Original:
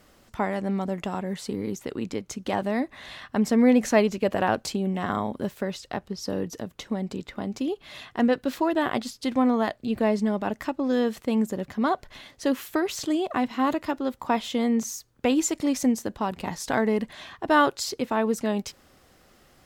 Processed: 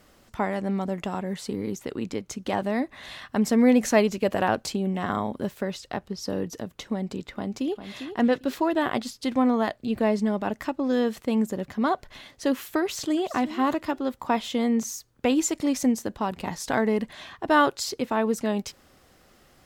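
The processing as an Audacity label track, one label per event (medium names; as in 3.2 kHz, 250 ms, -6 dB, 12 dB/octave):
3.030000	4.480000	treble shelf 5.5 kHz +4.5 dB
7.310000	7.970000	echo throw 400 ms, feedback 20%, level -9.5 dB
12.800000	13.370000	echo throw 370 ms, feedback 15%, level -13.5 dB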